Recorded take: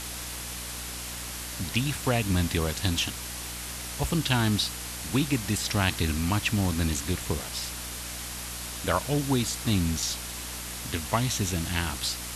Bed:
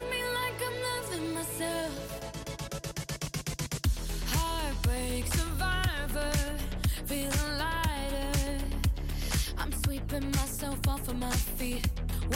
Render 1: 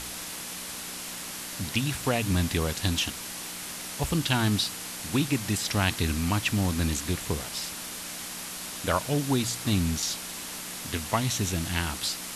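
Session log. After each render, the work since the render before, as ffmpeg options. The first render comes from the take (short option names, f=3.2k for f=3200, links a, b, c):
-af "bandreject=f=60:t=h:w=4,bandreject=f=120:t=h:w=4"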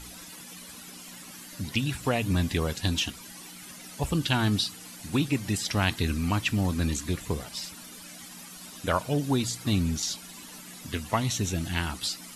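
-af "afftdn=nr=13:nf=-38"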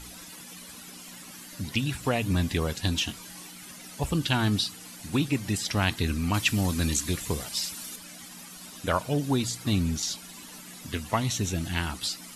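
-filter_complex "[0:a]asettb=1/sr,asplit=3[a][b][c];[a]atrim=end=3.064[d];[b]atrim=start=3.06:end=3.47,asetpts=PTS-STARTPTS,afade=t=in:d=0.004:c=qsin,afade=t=out:st=0.406:d=0.004:c=qsin,asplit=2[e][f];[f]adelay=23,volume=-6dB[g];[e][g]amix=inputs=2:normalize=0,atrim=end_sample=18081[h];[c]atrim=start=3.466[i];[d][h]acrossfade=d=0.004:c1=hsin:c2=qsin[j];[j][i]acrossfade=d=0.004:c1=qsin:c2=hsin,asettb=1/sr,asplit=3[k][l][m];[k]atrim=end=6.344[n];[l]atrim=start=6.34:end=7.96,asetpts=PTS-STARTPTS,afade=t=in:d=0.004:c=qsin,afade=t=out:st=1.616:d=0.004:c=qsin,highshelf=f=3k:g=8[o];[m]atrim=start=7.956[p];[n][o]acrossfade=d=0.004:c1=hsin:c2=qsin[q];[q][p]acrossfade=d=0.004:c1=qsin:c2=hsin"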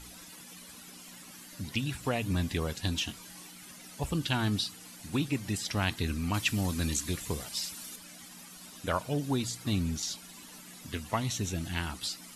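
-af "volume=-4.5dB"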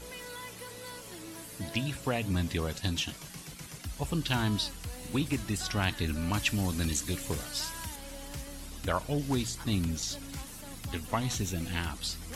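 -filter_complex "[1:a]volume=-12dB[a];[0:a][a]amix=inputs=2:normalize=0"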